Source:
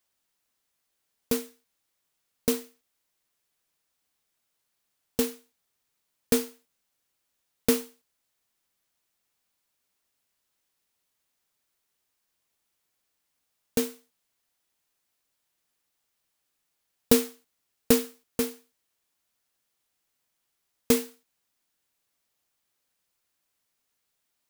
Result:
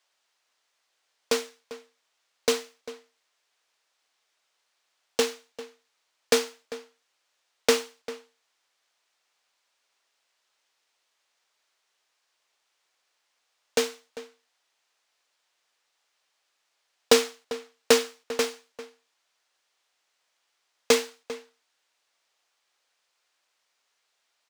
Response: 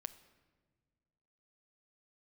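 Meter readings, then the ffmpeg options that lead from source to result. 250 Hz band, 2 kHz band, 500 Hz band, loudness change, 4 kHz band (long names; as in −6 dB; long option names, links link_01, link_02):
−6.5 dB, +8.5 dB, +4.5 dB, +1.5 dB, +8.0 dB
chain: -filter_complex "[0:a]acrossover=split=430 7200:gain=0.0794 1 0.1[link_01][link_02][link_03];[link_01][link_02][link_03]amix=inputs=3:normalize=0,asplit=2[link_04][link_05];[link_05]adelay=396.5,volume=-15dB,highshelf=frequency=4000:gain=-8.92[link_06];[link_04][link_06]amix=inputs=2:normalize=0,volume=8.5dB"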